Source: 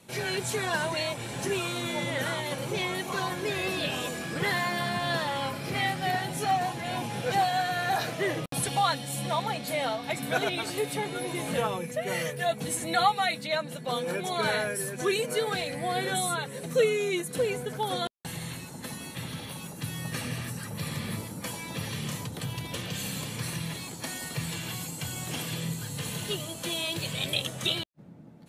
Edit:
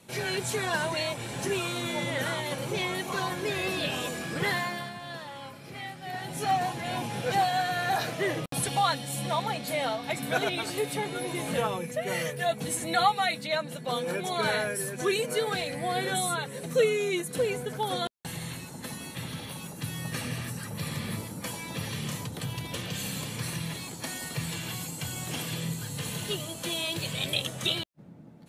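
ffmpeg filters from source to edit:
-filter_complex "[0:a]asplit=3[a][b][c];[a]atrim=end=4.94,asetpts=PTS-STARTPTS,afade=t=out:st=4.49:d=0.45:silence=0.281838[d];[b]atrim=start=4.94:end=6.06,asetpts=PTS-STARTPTS,volume=-11dB[e];[c]atrim=start=6.06,asetpts=PTS-STARTPTS,afade=t=in:d=0.45:silence=0.281838[f];[d][e][f]concat=n=3:v=0:a=1"

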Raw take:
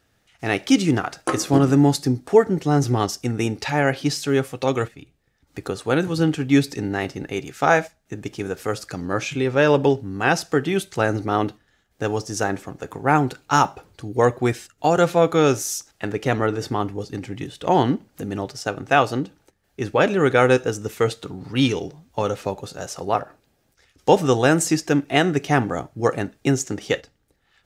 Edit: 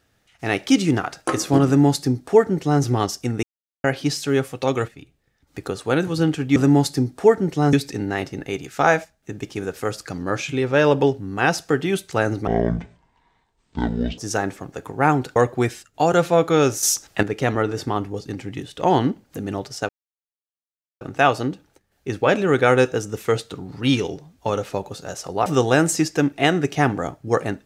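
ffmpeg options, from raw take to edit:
-filter_complex "[0:a]asplit=12[a][b][c][d][e][f][g][h][i][j][k][l];[a]atrim=end=3.43,asetpts=PTS-STARTPTS,afade=t=out:st=3.426:d=0.004:c=hsin[m];[b]atrim=start=3.43:end=3.84,asetpts=PTS-STARTPTS,volume=0[n];[c]atrim=start=3.84:end=6.562,asetpts=PTS-STARTPTS,afade=t=in:d=0.004:c=hsin[o];[d]atrim=start=1.648:end=2.822[p];[e]atrim=start=6.558:end=11.304[q];[f]atrim=start=11.3:end=12.24,asetpts=PTS-STARTPTS,asetrate=24255,aresample=44100[r];[g]atrim=start=12.236:end=13.422[s];[h]atrim=start=14.198:end=15.672[t];[i]atrim=start=15.668:end=16.072,asetpts=PTS-STARTPTS,volume=8.5dB[u];[j]atrim=start=16.068:end=18.73,asetpts=PTS-STARTPTS,afade=t=out:st=2.658:d=0.004:c=hsin,apad=pad_dur=1.12[v];[k]atrim=start=18.73:end=23.182,asetpts=PTS-STARTPTS,afade=t=in:d=0.004:c=hsin[w];[l]atrim=start=24.178[x];[m][n][o]concat=n=3:v=0:a=1[y];[y][p]acrossfade=d=0.004:c1=hsin:c2=hsin[z];[z][q]acrossfade=d=0.004:c1=hsin:c2=hsin[aa];[aa][r]acrossfade=d=0.004:c1=hsin:c2=hsin[ab];[ab][s]acrossfade=d=0.004:c1=hsin:c2=hsin[ac];[ac][t]acrossfade=d=0.004:c1=hsin:c2=hsin[ad];[ad][u]acrossfade=d=0.004:c1=hsin:c2=hsin[ae];[v][w]concat=n=2:v=0:a=1[af];[ae][af]acrossfade=d=0.004:c1=hsin:c2=hsin[ag];[ag][x]acrossfade=d=0.004:c1=hsin:c2=hsin"

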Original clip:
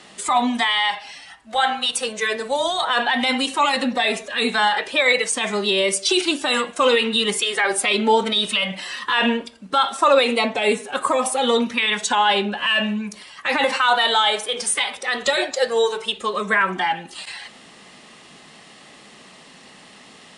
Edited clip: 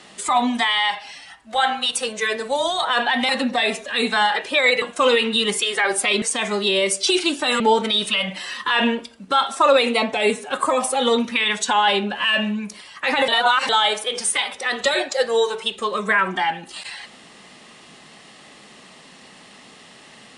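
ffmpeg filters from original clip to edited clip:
-filter_complex "[0:a]asplit=7[a][b][c][d][e][f][g];[a]atrim=end=3.292[h];[b]atrim=start=3.708:end=5.242[i];[c]atrim=start=6.618:end=8.022[j];[d]atrim=start=5.238:end=6.622[k];[e]atrim=start=8.018:end=13.702[l];[f]atrim=start=13.698:end=14.112,asetpts=PTS-STARTPTS,areverse[m];[g]atrim=start=14.108[n];[h][i]acrossfade=d=0.004:c1=hsin:c2=hsin[o];[o][j]acrossfade=d=0.004:c1=hsin:c2=hsin[p];[p][k]acrossfade=d=0.004:c1=hsin:c2=hsin[q];[q][l]acrossfade=d=0.004:c1=hsin:c2=hsin[r];[r][m]acrossfade=d=0.004:c1=hsin:c2=hsin[s];[s][n]acrossfade=d=0.004:c1=hsin:c2=hsin"

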